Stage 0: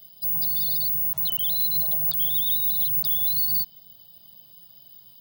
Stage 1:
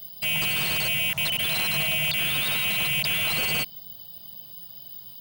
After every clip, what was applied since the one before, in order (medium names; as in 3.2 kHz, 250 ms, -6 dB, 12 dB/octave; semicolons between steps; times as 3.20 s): slew-rate limiter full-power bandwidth 200 Hz; trim +7 dB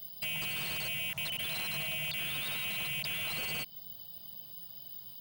compression 2.5:1, threshold -31 dBFS, peak gain reduction 6.5 dB; trim -5 dB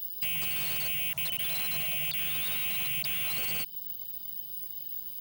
treble shelf 9.3 kHz +10 dB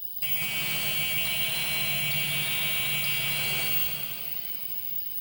reverberation RT60 3.7 s, pre-delay 6 ms, DRR -5 dB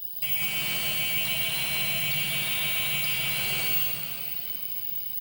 delay 115 ms -9 dB